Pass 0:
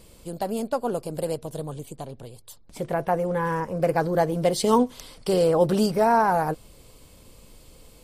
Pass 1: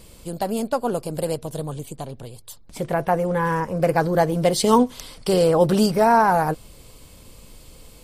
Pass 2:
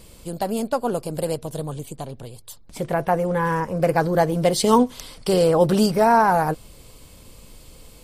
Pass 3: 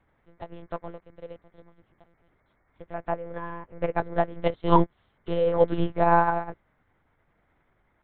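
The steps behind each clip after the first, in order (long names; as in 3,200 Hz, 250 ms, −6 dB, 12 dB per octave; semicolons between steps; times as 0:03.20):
parametric band 460 Hz −2.5 dB 1.9 octaves; level +5 dB
no processing that can be heard
hum with harmonics 60 Hz, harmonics 38, −40 dBFS −2 dB per octave; one-pitch LPC vocoder at 8 kHz 170 Hz; expander for the loud parts 2.5 to 1, over −32 dBFS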